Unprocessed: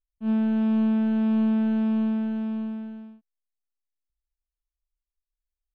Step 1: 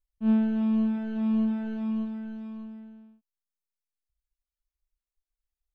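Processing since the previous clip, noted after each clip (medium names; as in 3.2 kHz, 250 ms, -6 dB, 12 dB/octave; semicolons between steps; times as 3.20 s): reverb removal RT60 1.7 s; bass shelf 200 Hz +5 dB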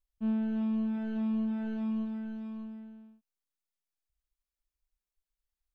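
compression 3:1, threshold -28 dBFS, peak gain reduction 7 dB; trim -1.5 dB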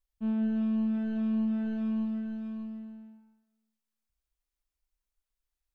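reverberation RT60 0.90 s, pre-delay 140 ms, DRR 5.5 dB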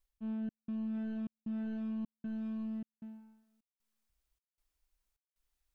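reverse; compression 6:1, threshold -40 dBFS, peak gain reduction 13 dB; reverse; trance gate "xxxxx..x" 154 bpm -60 dB; trim +3.5 dB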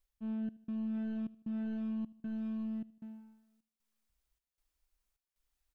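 feedback delay 77 ms, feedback 47%, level -21.5 dB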